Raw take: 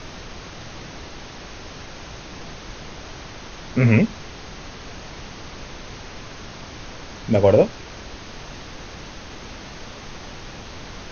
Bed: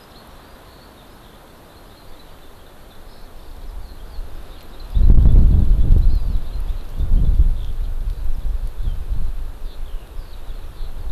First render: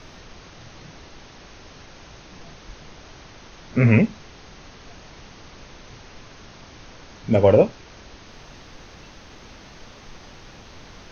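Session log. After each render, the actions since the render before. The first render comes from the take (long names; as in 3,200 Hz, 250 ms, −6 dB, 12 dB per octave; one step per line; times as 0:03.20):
noise reduction from a noise print 7 dB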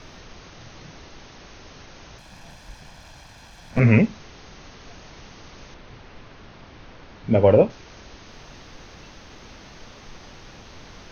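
0:02.18–0:03.80: lower of the sound and its delayed copy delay 1.2 ms
0:05.74–0:07.70: high-frequency loss of the air 160 metres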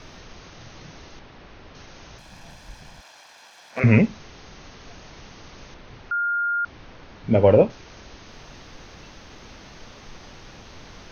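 0:01.19–0:01.75: high-frequency loss of the air 190 metres
0:03.01–0:03.84: high-pass filter 550 Hz
0:06.11–0:06.65: beep over 1,410 Hz −20.5 dBFS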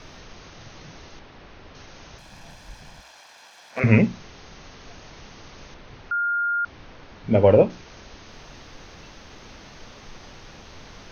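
mains-hum notches 60/120/180/240/300/360 Hz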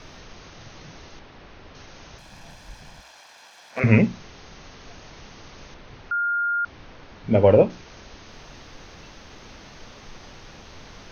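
no processing that can be heard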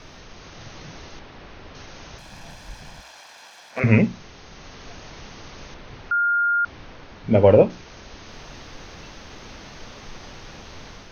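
automatic gain control gain up to 3.5 dB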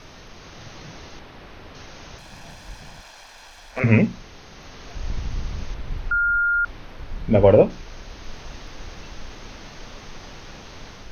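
mix in bed −17.5 dB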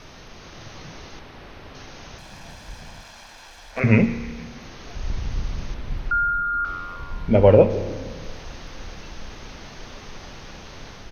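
echo with shifted repeats 155 ms, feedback 62%, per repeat −90 Hz, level −19 dB
spring reverb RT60 1.8 s, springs 30 ms, chirp 75 ms, DRR 12 dB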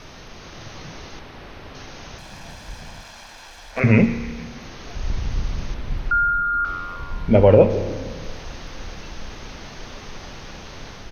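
level +2.5 dB
brickwall limiter −2 dBFS, peak gain reduction 3 dB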